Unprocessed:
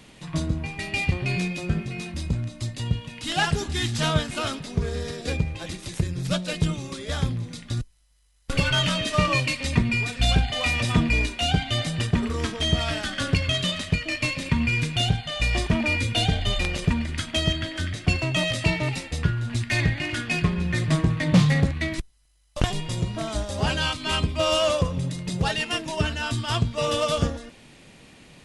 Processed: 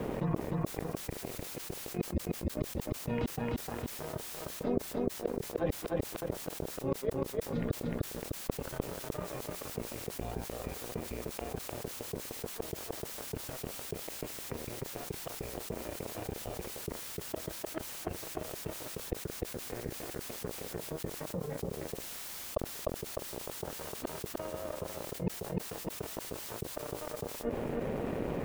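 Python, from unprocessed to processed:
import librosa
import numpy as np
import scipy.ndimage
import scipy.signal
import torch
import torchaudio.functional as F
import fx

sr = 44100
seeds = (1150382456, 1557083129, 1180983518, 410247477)

y = fx.spec_gate(x, sr, threshold_db=-30, keep='strong')
y = fx.gate_flip(y, sr, shuts_db=-23.0, range_db=-34)
y = fx.echo_feedback(y, sr, ms=302, feedback_pct=26, wet_db=-4)
y = np.sign(y) * np.maximum(np.abs(y) - 10.0 ** (-52.5 / 20.0), 0.0)
y = scipy.signal.sosfilt(scipy.signal.butter(2, 1200.0, 'lowpass', fs=sr, output='sos'), y)
y = fx.peak_eq(y, sr, hz=460.0, db=9.5, octaves=1.2)
y = fx.dmg_noise_colour(y, sr, seeds[0], colour='white', level_db=-78.0)
y = fx.env_flatten(y, sr, amount_pct=70)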